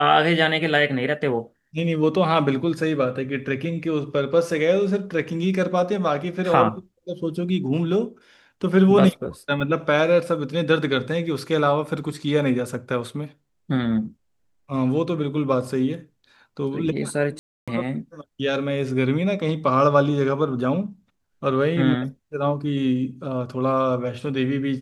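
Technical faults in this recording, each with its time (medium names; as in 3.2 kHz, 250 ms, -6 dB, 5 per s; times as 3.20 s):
9.60 s: dropout 4.4 ms
17.39–17.68 s: dropout 286 ms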